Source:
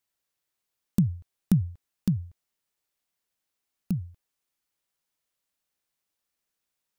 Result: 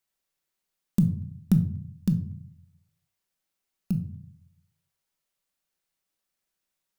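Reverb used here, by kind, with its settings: simulated room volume 580 m³, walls furnished, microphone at 1.1 m; trim -1 dB

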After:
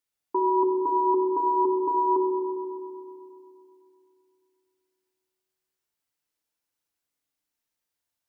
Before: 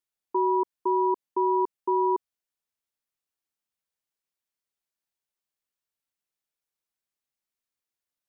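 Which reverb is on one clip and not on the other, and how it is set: FDN reverb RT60 2.6 s, low-frequency decay 1.25×, high-frequency decay 0.85×, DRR 1 dB; trim +2 dB

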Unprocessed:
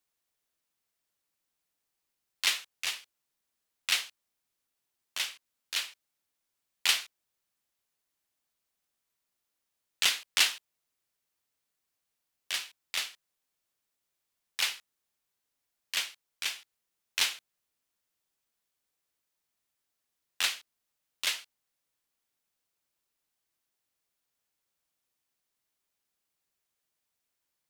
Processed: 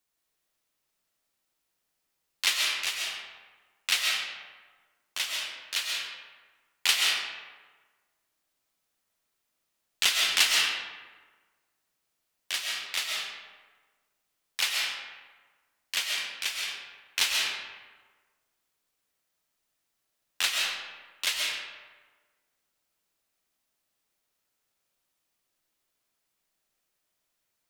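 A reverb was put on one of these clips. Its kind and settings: algorithmic reverb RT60 1.4 s, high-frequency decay 0.6×, pre-delay 90 ms, DRR -1.5 dB; trim +1.5 dB

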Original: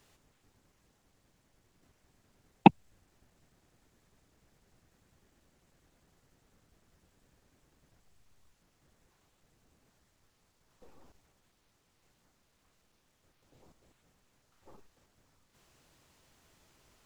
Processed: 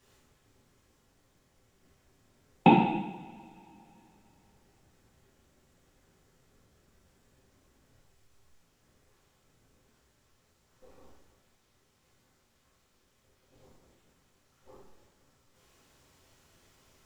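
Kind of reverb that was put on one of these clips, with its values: two-slope reverb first 0.92 s, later 3.3 s, from -22 dB, DRR -7 dB; trim -5 dB

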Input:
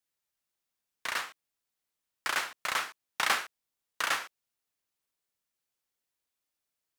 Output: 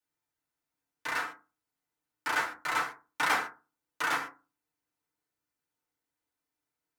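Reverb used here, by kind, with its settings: FDN reverb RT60 0.31 s, low-frequency decay 1.3×, high-frequency decay 0.3×, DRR -8 dB; trim -7 dB

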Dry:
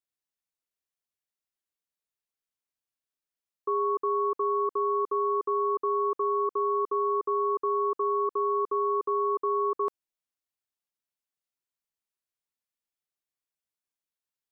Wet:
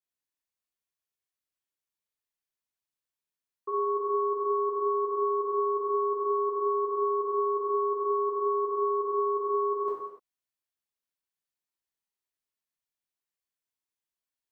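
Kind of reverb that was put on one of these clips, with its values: gated-style reverb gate 320 ms falling, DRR -6.5 dB; trim -8.5 dB

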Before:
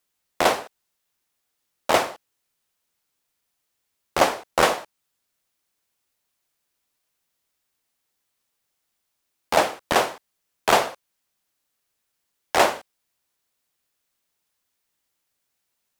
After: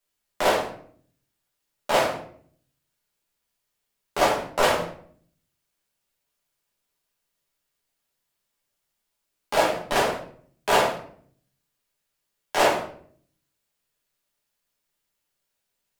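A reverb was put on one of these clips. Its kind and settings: simulated room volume 70 m³, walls mixed, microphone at 1.3 m; trim -7.5 dB

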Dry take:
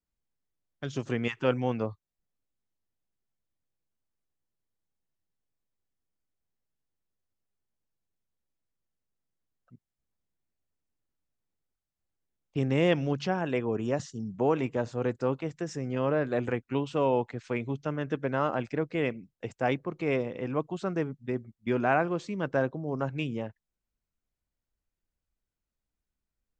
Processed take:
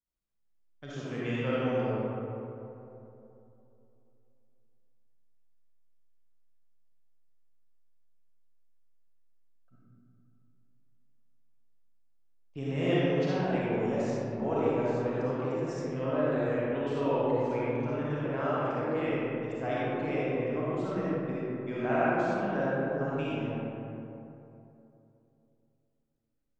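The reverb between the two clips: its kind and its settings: algorithmic reverb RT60 3 s, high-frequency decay 0.4×, pre-delay 15 ms, DRR -9 dB; trim -10.5 dB

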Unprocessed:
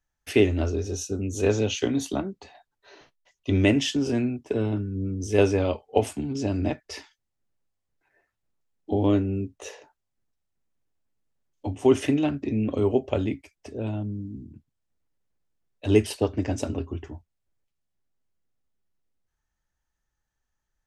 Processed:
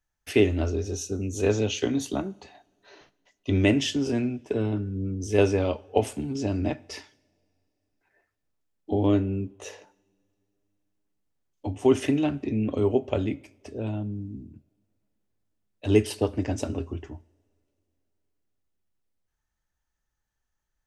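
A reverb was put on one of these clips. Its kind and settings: two-slope reverb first 0.73 s, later 3.2 s, from -21 dB, DRR 19 dB; trim -1 dB

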